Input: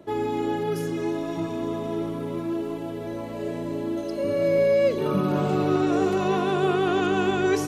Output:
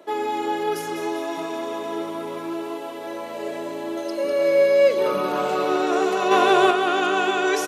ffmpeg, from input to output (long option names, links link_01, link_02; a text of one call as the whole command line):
ffmpeg -i in.wav -filter_complex "[0:a]aecho=1:1:198|396|594|792|990|1188|1386:0.335|0.198|0.117|0.0688|0.0406|0.0239|0.0141,asettb=1/sr,asplit=3[link_01][link_02][link_03];[link_01]atrim=end=6.314[link_04];[link_02]atrim=start=6.31:end=6.71,asetpts=PTS-STARTPTS,afade=type=in:duration=0.004:curve=qsin,afade=type=out:start_time=0.396:duration=0.004:curve=qsin,acontrast=31[link_05];[link_03]atrim=start=6.706[link_06];[link_04][link_05]acrossfade=duration=0.004:curve1=hsin:curve2=qsin[link_07];[link_07][link_06]acrossfade=duration=0.004:curve1=qsin:curve2=hsin,highpass=510,volume=5.5dB" out.wav